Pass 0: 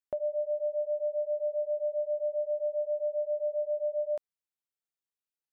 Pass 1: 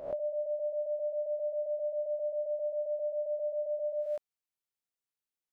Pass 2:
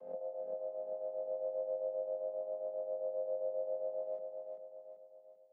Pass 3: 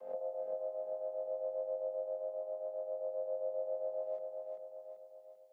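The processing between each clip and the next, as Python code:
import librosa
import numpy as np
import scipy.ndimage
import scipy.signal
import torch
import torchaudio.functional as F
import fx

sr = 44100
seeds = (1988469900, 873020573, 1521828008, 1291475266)

y1 = fx.spec_swells(x, sr, rise_s=0.57)
y1 = F.gain(torch.from_numpy(y1), -3.0).numpy()
y2 = fx.chord_vocoder(y1, sr, chord='minor triad', root=53)
y2 = fx.echo_feedback(y2, sr, ms=390, feedback_pct=48, wet_db=-5.0)
y2 = F.gain(torch.from_numpy(y2), -7.0).numpy()
y3 = fx.highpass(y2, sr, hz=900.0, slope=6)
y3 = fx.rider(y3, sr, range_db=3, speed_s=2.0)
y3 = F.gain(torch.from_numpy(y3), 5.5).numpy()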